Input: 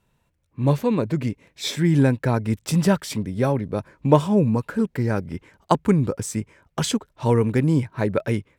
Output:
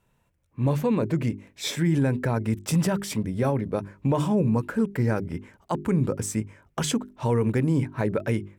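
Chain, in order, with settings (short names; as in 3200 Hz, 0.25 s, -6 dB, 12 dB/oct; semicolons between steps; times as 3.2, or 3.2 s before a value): bell 4200 Hz -4.5 dB 0.76 oct; notches 50/100/150/200/250/300/350/400 Hz; limiter -15 dBFS, peak gain reduction 11.5 dB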